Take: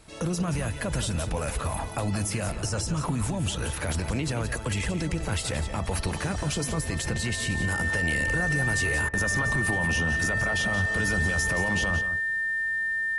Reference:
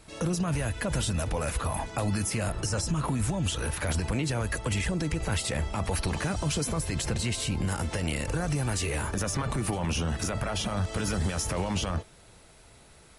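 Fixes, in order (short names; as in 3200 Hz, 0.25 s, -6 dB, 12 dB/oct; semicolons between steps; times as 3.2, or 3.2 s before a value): notch 1800 Hz, Q 30; interpolate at 9.09, 43 ms; inverse comb 0.175 s -10 dB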